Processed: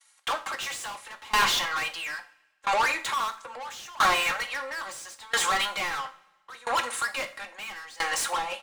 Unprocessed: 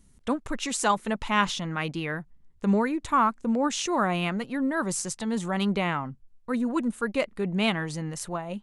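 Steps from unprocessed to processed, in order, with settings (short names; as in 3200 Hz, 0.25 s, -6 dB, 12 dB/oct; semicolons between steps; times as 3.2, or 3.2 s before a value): expander -47 dBFS; HPF 790 Hz 24 dB/oct; comb 3.7 ms, depth 93%; overdrive pedal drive 37 dB, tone 5300 Hz, clips at -7.5 dBFS; two-slope reverb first 0.37 s, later 1.8 s, from -18 dB, DRR 5.5 dB; dB-ramp tremolo decaying 0.75 Hz, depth 24 dB; gain -6.5 dB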